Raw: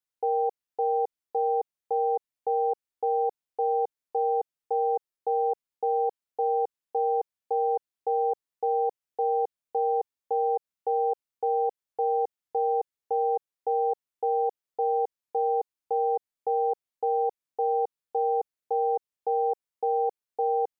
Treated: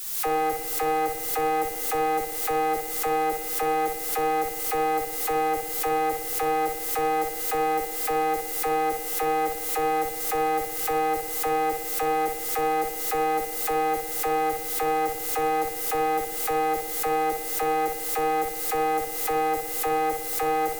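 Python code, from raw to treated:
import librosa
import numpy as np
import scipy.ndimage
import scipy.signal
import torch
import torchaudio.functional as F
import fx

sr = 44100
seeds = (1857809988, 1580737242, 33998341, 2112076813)

p1 = x + 0.5 * 10.0 ** (-33.0 / 20.0) * np.diff(np.sign(x), prepend=np.sign(x[:1]))
p2 = fx.tube_stage(p1, sr, drive_db=28.0, bias=0.8)
p3 = fx.dispersion(p2, sr, late='lows', ms=42.0, hz=540.0)
p4 = p3 + fx.room_flutter(p3, sr, wall_m=10.7, rt60_s=0.54, dry=0)
p5 = fx.rev_spring(p4, sr, rt60_s=1.0, pass_ms=(54,), chirp_ms=55, drr_db=8.5)
p6 = fx.pre_swell(p5, sr, db_per_s=44.0)
y = p6 * 10.0 ** (6.5 / 20.0)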